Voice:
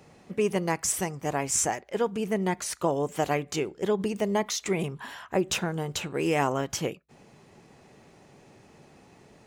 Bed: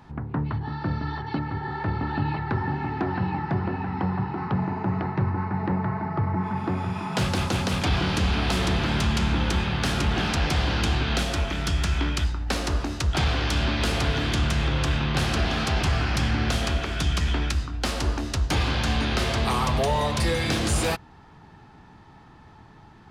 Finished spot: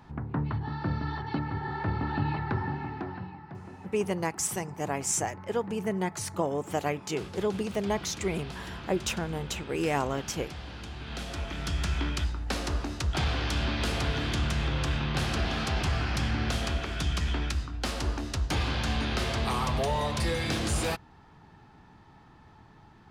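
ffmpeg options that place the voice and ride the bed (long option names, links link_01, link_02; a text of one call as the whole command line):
ffmpeg -i stem1.wav -i stem2.wav -filter_complex "[0:a]adelay=3550,volume=-3dB[link_01];[1:a]volume=9.5dB,afade=type=out:start_time=2.44:duration=0.92:silence=0.188365,afade=type=in:start_time=10.95:duration=0.91:silence=0.237137[link_02];[link_01][link_02]amix=inputs=2:normalize=0" out.wav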